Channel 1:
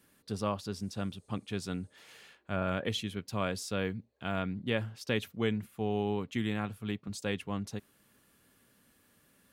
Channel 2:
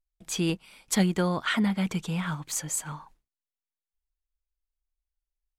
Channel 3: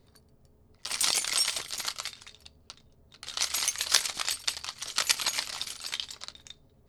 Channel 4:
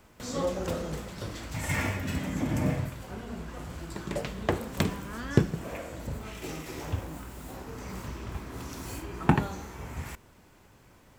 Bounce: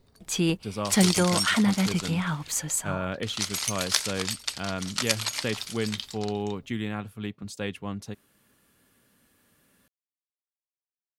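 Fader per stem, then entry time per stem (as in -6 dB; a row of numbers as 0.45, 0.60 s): +1.5 dB, +2.5 dB, -1.0 dB, off; 0.35 s, 0.00 s, 0.00 s, off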